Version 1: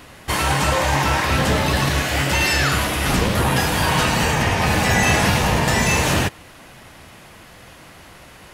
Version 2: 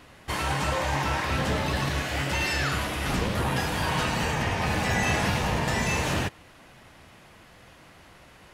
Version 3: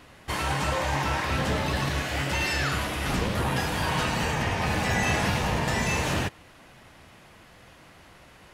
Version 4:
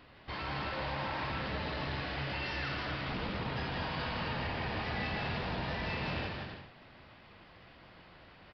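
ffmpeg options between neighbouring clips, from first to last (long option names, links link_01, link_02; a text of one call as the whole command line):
ffmpeg -i in.wav -af "highshelf=frequency=7900:gain=-7,volume=-8dB" out.wav
ffmpeg -i in.wav -af anull out.wav
ffmpeg -i in.wav -filter_complex "[0:a]asoftclip=type=tanh:threshold=-28.5dB,asplit=2[link_01][link_02];[link_02]aecho=0:1:160|264|331.6|375.5|404.1:0.631|0.398|0.251|0.158|0.1[link_03];[link_01][link_03]amix=inputs=2:normalize=0,aresample=11025,aresample=44100,volume=-6.5dB" out.wav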